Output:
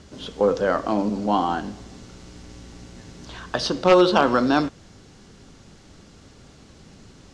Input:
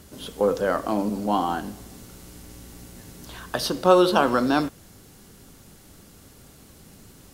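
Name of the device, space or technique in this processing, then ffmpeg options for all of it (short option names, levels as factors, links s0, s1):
synthesiser wavefolder: -af "aeval=exprs='0.376*(abs(mod(val(0)/0.376+3,4)-2)-1)':c=same,lowpass=f=6600:w=0.5412,lowpass=f=6600:w=1.3066,volume=1.26"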